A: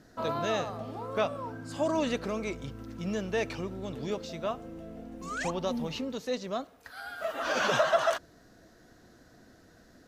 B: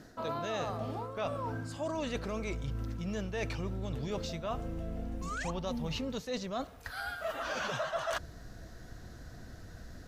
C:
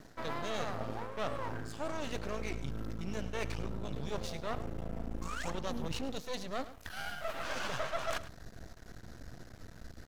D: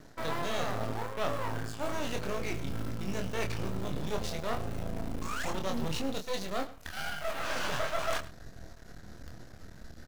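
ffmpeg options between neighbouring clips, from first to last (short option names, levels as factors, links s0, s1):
-af "asubboost=boost=5:cutoff=120,areverse,acompressor=threshold=0.0126:ratio=6,areverse,volume=1.78"
-af "aeval=exprs='max(val(0),0)':c=same,aecho=1:1:105:0.168,volume=1.26"
-filter_complex "[0:a]asplit=2[s0][s1];[s1]acrusher=bits=3:dc=4:mix=0:aa=0.000001,volume=0.335[s2];[s0][s2]amix=inputs=2:normalize=0,asplit=2[s3][s4];[s4]adelay=26,volume=0.562[s5];[s3][s5]amix=inputs=2:normalize=0"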